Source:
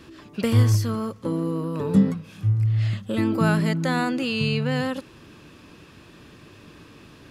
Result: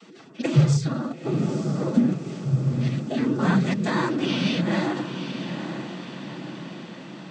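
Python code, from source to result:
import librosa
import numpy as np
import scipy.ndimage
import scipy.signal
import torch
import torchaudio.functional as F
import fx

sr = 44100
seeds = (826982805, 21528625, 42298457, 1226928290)

y = fx.noise_vocoder(x, sr, seeds[0], bands=16)
y = fx.pitch_keep_formants(y, sr, semitones=4.0)
y = fx.echo_diffused(y, sr, ms=901, feedback_pct=58, wet_db=-8.5)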